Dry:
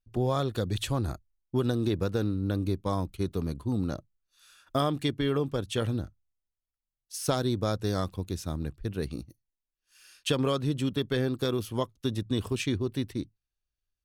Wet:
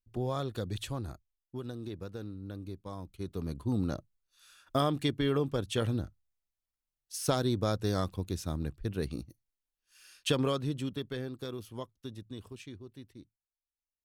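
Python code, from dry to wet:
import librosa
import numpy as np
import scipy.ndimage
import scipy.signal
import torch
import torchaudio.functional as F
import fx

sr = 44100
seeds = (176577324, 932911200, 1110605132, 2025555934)

y = fx.gain(x, sr, db=fx.line((0.72, -6.0), (1.6, -13.0), (2.98, -13.0), (3.65, -1.5), (10.35, -1.5), (11.31, -11.0), (11.82, -11.0), (12.79, -18.0)))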